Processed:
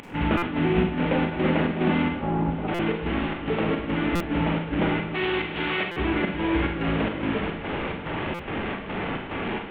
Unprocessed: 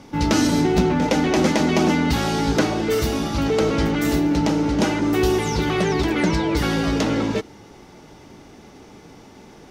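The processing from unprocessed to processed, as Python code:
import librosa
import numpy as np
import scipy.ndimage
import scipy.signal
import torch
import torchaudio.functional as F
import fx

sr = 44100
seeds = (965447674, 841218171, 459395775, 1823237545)

y = fx.delta_mod(x, sr, bps=16000, step_db=-19.0)
y = fx.lowpass(y, sr, hz=1100.0, slope=24, at=(2.16, 2.67), fade=0.02)
y = fx.tilt_eq(y, sr, slope=3.5, at=(5.14, 5.96))
y = fx.volume_shaper(y, sr, bpm=144, per_beat=1, depth_db=-17, release_ms=141.0, shape='slow start')
y = fx.echo_diffused(y, sr, ms=717, feedback_pct=48, wet_db=-14.0)
y = fx.rev_schroeder(y, sr, rt60_s=0.57, comb_ms=33, drr_db=2.5)
y = fx.buffer_glitch(y, sr, at_s=(0.37, 2.74, 4.15, 5.91, 8.34), block=256, repeats=8)
y = y * librosa.db_to_amplitude(-5.5)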